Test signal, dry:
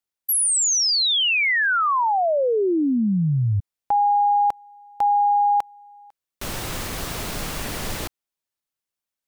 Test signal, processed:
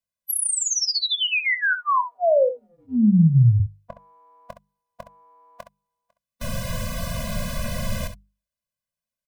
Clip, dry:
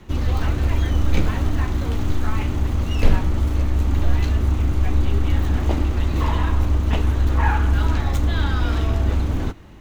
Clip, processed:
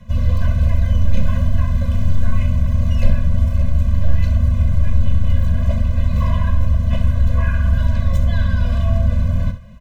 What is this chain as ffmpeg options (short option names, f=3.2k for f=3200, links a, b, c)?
-filter_complex "[0:a]equalizer=f=270:w=5.2:g=8,bandreject=f=50:t=h:w=6,bandreject=f=100:t=h:w=6,bandreject=f=150:t=h:w=6,bandreject=f=200:t=h:w=6,asplit=2[a][b];[b]alimiter=limit=-11dB:level=0:latency=1:release=145,volume=2.5dB[c];[a][c]amix=inputs=2:normalize=0,tiltshelf=f=730:g=3.5,asplit=2[d][e];[e]aecho=0:1:24|66:0.168|0.282[f];[d][f]amix=inputs=2:normalize=0,afftfilt=real='re*eq(mod(floor(b*sr/1024/240),2),0)':imag='im*eq(mod(floor(b*sr/1024/240),2),0)':win_size=1024:overlap=0.75,volume=-5dB"